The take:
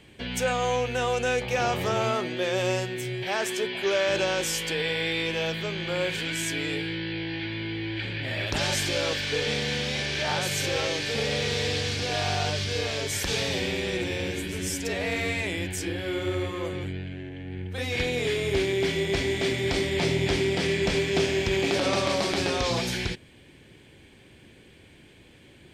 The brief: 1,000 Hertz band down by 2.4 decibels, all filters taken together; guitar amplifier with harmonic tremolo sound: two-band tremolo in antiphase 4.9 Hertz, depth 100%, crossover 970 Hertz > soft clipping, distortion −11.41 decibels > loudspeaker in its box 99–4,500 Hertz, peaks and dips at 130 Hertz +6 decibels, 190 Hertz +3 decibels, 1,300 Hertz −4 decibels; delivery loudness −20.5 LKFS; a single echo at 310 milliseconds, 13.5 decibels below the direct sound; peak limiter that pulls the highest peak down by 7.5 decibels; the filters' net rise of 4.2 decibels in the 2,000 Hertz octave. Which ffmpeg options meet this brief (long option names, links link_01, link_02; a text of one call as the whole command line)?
ffmpeg -i in.wav -filter_complex "[0:a]equalizer=frequency=1000:width_type=o:gain=-4,equalizer=frequency=2000:width_type=o:gain=6.5,alimiter=limit=-15.5dB:level=0:latency=1,aecho=1:1:310:0.211,acrossover=split=970[link_01][link_02];[link_01]aeval=exprs='val(0)*(1-1/2+1/2*cos(2*PI*4.9*n/s))':channel_layout=same[link_03];[link_02]aeval=exprs='val(0)*(1-1/2-1/2*cos(2*PI*4.9*n/s))':channel_layout=same[link_04];[link_03][link_04]amix=inputs=2:normalize=0,asoftclip=threshold=-29.5dB,highpass=99,equalizer=frequency=130:width_type=q:width=4:gain=6,equalizer=frequency=190:width_type=q:width=4:gain=3,equalizer=frequency=1300:width_type=q:width=4:gain=-4,lowpass=frequency=4500:width=0.5412,lowpass=frequency=4500:width=1.3066,volume=13.5dB" out.wav